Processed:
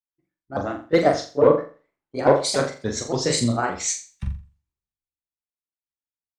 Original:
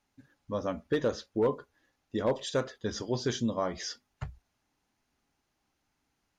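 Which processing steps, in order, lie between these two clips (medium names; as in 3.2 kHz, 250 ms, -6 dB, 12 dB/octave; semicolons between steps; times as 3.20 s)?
sawtooth pitch modulation +5.5 st, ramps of 284 ms; flutter echo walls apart 7.3 m, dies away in 0.47 s; three bands expanded up and down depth 100%; trim +8 dB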